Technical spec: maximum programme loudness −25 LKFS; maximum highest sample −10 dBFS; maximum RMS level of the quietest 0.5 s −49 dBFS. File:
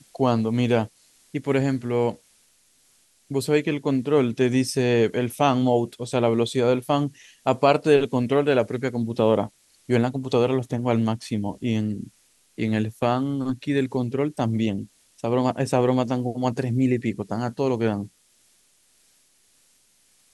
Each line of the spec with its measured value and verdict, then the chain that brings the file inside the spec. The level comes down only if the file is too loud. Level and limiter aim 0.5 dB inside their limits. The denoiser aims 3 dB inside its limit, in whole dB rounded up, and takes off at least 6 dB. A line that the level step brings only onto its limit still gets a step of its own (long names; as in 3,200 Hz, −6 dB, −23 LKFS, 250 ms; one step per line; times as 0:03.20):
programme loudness −23.5 LKFS: out of spec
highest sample −4.0 dBFS: out of spec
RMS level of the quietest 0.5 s −61 dBFS: in spec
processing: level −2 dB
brickwall limiter −10.5 dBFS